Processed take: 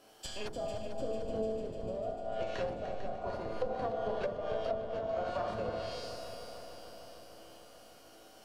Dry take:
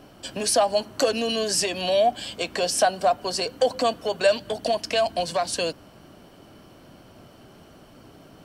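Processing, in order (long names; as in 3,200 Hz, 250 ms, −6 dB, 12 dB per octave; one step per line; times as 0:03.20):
phase distortion by the signal itself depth 0.18 ms
bass and treble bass −14 dB, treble +8 dB
mains-hum notches 60/120/180/240/300 Hz
in parallel at −4 dB: comparator with hysteresis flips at −19 dBFS
on the sum: tuned comb filter 110 Hz, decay 1.5 s, harmonics all, mix 90%
four-comb reverb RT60 1.4 s, combs from 26 ms, DRR 1 dB
treble cut that deepens with the level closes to 350 Hz, closed at −31 dBFS
on a send: echo machine with several playback heads 149 ms, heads second and third, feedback 68%, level −11 dB
on the sum: level +5.5 dB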